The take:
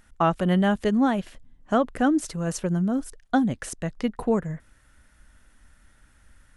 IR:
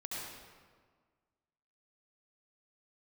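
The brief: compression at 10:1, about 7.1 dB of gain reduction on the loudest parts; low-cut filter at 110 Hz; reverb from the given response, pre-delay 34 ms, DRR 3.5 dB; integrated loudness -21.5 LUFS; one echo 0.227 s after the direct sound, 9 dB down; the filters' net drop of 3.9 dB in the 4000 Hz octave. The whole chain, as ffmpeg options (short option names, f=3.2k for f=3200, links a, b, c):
-filter_complex "[0:a]highpass=110,equalizer=f=4k:t=o:g=-6,acompressor=threshold=-24dB:ratio=10,aecho=1:1:227:0.355,asplit=2[a][b];[1:a]atrim=start_sample=2205,adelay=34[c];[b][c]afir=irnorm=-1:irlink=0,volume=-4.5dB[d];[a][d]amix=inputs=2:normalize=0,volume=7dB"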